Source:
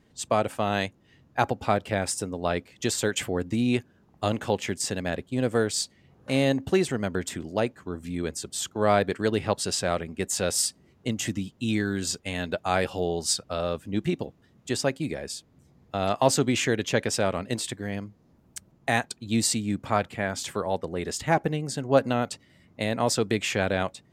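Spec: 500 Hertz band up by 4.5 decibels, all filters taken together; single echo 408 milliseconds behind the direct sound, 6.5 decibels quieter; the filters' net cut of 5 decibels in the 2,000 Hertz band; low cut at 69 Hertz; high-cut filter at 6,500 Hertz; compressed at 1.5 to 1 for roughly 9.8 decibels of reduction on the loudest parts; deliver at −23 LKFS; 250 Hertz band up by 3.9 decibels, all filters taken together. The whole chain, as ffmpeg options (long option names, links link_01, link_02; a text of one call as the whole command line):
ffmpeg -i in.wav -af "highpass=69,lowpass=6500,equalizer=frequency=250:width_type=o:gain=3.5,equalizer=frequency=500:width_type=o:gain=5,equalizer=frequency=2000:width_type=o:gain=-7,acompressor=threshold=-38dB:ratio=1.5,aecho=1:1:408:0.473,volume=8.5dB" out.wav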